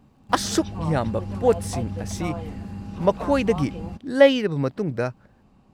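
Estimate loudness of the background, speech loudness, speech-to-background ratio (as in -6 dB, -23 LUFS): -33.0 LUFS, -23.5 LUFS, 9.5 dB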